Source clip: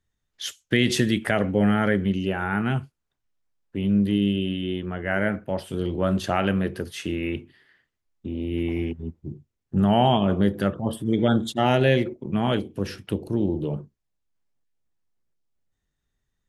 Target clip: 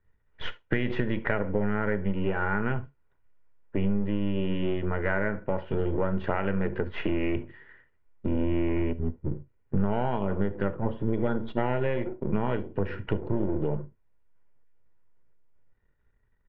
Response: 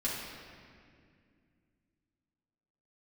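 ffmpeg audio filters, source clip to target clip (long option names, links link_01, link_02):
-filter_complex "[0:a]aeval=exprs='if(lt(val(0),0),0.447*val(0),val(0))':channel_layout=same,lowpass=frequency=2200:width=0.5412,lowpass=frequency=2200:width=1.3066,aecho=1:1:2.1:0.38,acompressor=threshold=-33dB:ratio=6,asplit=2[link_01][link_02];[1:a]atrim=start_sample=2205,atrim=end_sample=3528[link_03];[link_02][link_03]afir=irnorm=-1:irlink=0,volume=-14.5dB[link_04];[link_01][link_04]amix=inputs=2:normalize=0,volume=8dB"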